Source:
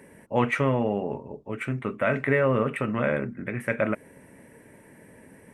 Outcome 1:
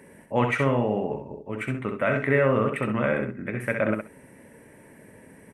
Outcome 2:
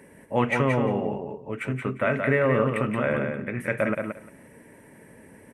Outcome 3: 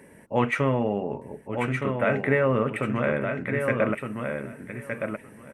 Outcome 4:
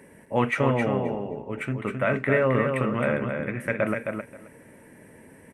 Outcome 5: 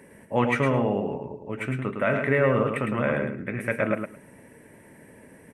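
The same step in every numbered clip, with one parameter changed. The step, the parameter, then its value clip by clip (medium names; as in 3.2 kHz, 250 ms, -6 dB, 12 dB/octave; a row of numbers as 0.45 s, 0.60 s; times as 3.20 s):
feedback delay, time: 65 ms, 175 ms, 1216 ms, 265 ms, 108 ms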